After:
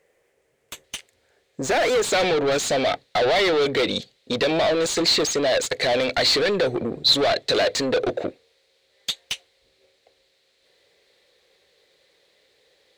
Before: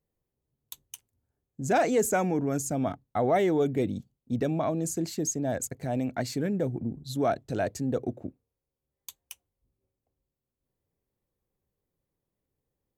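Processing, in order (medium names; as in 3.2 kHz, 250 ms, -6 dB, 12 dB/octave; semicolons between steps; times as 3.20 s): compression, threshold -27 dBFS, peak gain reduction 8 dB; graphic EQ 125/250/500/1000/2000/4000/8000 Hz -6/-8/+10/-6/+12/+5/+9 dB; overdrive pedal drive 30 dB, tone 1.6 kHz, clips at -13 dBFS; peaking EQ 4 kHz -6 dB 0.79 oct, from 0.84 s +7 dB, from 2.03 s +15 dB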